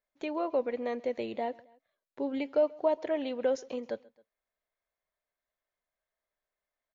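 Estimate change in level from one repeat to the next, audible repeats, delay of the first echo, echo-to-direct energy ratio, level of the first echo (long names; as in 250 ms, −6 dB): −5.0 dB, 2, 134 ms, −23.0 dB, −24.0 dB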